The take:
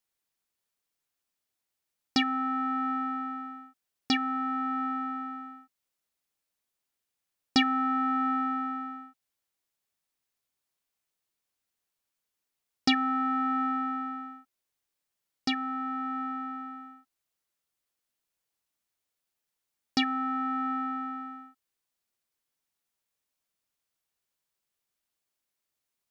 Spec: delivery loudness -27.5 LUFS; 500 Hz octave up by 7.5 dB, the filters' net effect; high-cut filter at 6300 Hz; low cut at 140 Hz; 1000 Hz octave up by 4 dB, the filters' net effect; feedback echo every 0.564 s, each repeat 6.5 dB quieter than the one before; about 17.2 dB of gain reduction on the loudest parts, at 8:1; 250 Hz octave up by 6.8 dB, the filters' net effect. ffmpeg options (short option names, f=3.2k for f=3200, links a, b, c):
-af "highpass=140,lowpass=6.3k,equalizer=f=250:t=o:g=5.5,equalizer=f=500:t=o:g=7.5,equalizer=f=1k:t=o:g=4,acompressor=threshold=-32dB:ratio=8,aecho=1:1:564|1128|1692|2256|2820|3384:0.473|0.222|0.105|0.0491|0.0231|0.0109,volume=11dB"